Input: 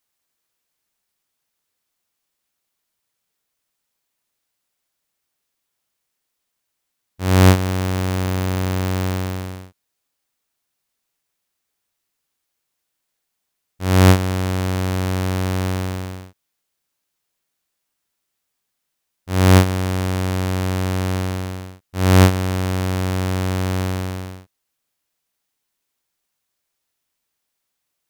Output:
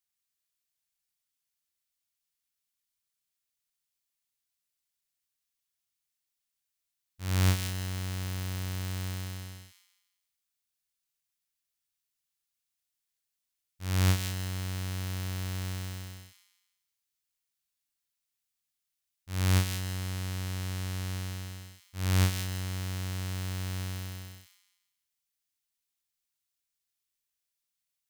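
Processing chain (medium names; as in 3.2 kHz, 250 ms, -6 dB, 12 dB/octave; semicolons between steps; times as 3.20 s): peaking EQ 470 Hz -13 dB 3 oct; on a send: feedback echo behind a high-pass 166 ms, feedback 34%, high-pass 2.3 kHz, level -4 dB; on the sum: trim -9 dB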